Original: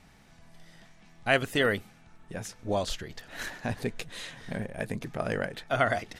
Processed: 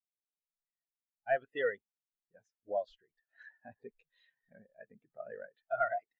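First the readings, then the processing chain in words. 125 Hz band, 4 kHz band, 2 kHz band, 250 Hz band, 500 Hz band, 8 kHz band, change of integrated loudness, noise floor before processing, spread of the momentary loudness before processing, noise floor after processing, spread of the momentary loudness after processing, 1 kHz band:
under -25 dB, -22.5 dB, -11.0 dB, -23.0 dB, -6.0 dB, under -35 dB, -5.5 dB, -57 dBFS, 13 LU, under -85 dBFS, 21 LU, -6.0 dB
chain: overdrive pedal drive 16 dB, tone 4.8 kHz, clips at -9 dBFS; spectral contrast expander 2.5:1; trim -9 dB

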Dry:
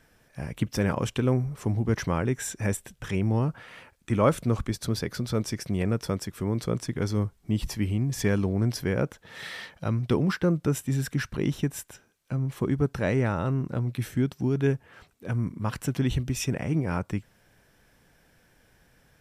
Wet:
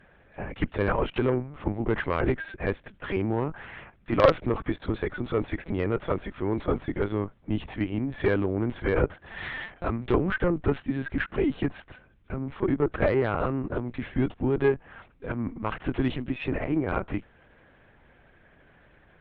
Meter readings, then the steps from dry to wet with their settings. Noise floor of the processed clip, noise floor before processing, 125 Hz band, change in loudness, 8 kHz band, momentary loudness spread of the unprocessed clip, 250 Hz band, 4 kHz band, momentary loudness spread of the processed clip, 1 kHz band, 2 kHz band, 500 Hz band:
-59 dBFS, -63 dBFS, -5.5 dB, -0.5 dB, under -30 dB, 9 LU, -0.5 dB, -4.0 dB, 10 LU, +3.5 dB, +3.5 dB, +3.5 dB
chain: three-band isolator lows -19 dB, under 190 Hz, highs -15 dB, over 2.9 kHz; hum 50 Hz, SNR 34 dB; LPC vocoder at 8 kHz pitch kept; Chebyshev shaper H 4 -11 dB, 6 -20 dB, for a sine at -8.5 dBFS; trim +5.5 dB

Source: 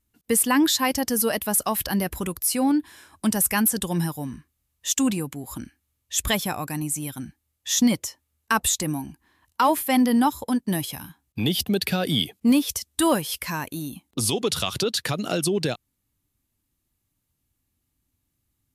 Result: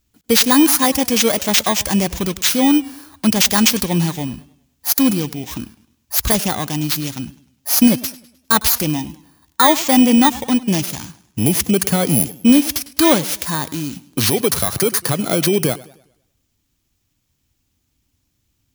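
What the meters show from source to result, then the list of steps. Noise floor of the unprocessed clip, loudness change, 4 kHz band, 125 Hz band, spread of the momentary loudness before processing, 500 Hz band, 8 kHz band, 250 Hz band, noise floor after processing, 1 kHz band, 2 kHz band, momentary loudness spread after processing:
-77 dBFS, +8.0 dB, +7.5 dB, +7.5 dB, 14 LU, +7.0 dB, +6.0 dB, +7.5 dB, -69 dBFS, +5.5 dB, +6.5 dB, 14 LU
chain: bit-reversed sample order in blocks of 16 samples; modulated delay 102 ms, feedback 41%, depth 124 cents, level -19 dB; trim +7.5 dB

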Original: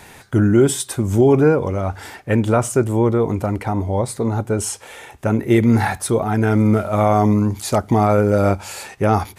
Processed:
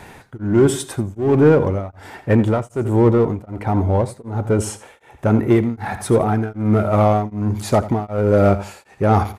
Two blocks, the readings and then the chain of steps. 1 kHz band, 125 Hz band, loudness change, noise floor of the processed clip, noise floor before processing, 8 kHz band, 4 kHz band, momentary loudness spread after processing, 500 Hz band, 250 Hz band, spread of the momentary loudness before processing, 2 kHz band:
-1.0 dB, 0.0 dB, -0.5 dB, -49 dBFS, -43 dBFS, -6.0 dB, -3.5 dB, 11 LU, +0.5 dB, -1.0 dB, 9 LU, -3.0 dB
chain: treble shelf 2.7 kHz -10 dB; in parallel at -3.5 dB: hard clipper -17 dBFS, distortion -7 dB; on the sum: feedback delay 85 ms, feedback 29%, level -14.5 dB; tremolo of two beating tones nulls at 1.3 Hz

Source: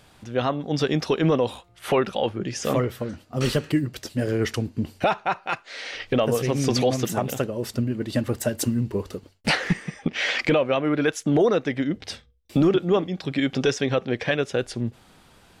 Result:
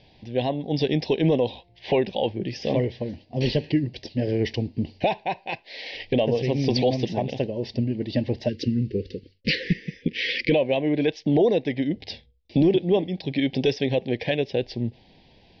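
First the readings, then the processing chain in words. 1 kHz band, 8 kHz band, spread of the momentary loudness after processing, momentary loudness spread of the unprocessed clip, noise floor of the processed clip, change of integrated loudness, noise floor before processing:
-4.0 dB, under -15 dB, 9 LU, 9 LU, -57 dBFS, -0.5 dB, -55 dBFS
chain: steep low-pass 5.3 kHz 72 dB/octave; spectral selection erased 8.49–10.51 s, 550–1200 Hz; Butterworth band-stop 1.3 kHz, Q 1.2

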